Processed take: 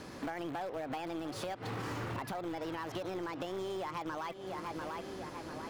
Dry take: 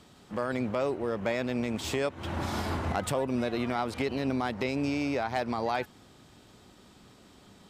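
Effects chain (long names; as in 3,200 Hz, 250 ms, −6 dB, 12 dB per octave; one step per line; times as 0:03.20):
on a send: feedback echo with a low-pass in the loop 938 ms, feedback 38%, low-pass 3,200 Hz, level −17 dB
on the sum: downward compressor 8 to 1, threshold −44 dBFS, peak gain reduction 19 dB
wrong playback speed 33 rpm record played at 45 rpm
in parallel at −9 dB: wrap-around overflow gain 41.5 dB
on the sum: high-shelf EQ 5,000 Hz −10 dB
mains-hum notches 50/100/150 Hz
level +7 dB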